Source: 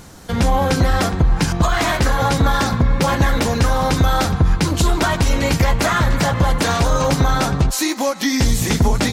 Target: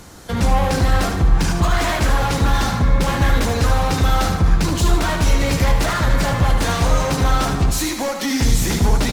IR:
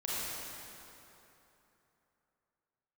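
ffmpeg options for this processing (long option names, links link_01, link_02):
-filter_complex "[0:a]equalizer=frequency=150:width_type=o:width=0.91:gain=-2.5,acrossover=split=150[link_01][link_02];[link_02]asoftclip=type=hard:threshold=-19.5dB[link_03];[link_01][link_03]amix=inputs=2:normalize=0,aecho=1:1:75|150|225|300|375|450:0.447|0.214|0.103|0.0494|0.0237|0.0114" -ar 48000 -c:a libopus -b:a 48k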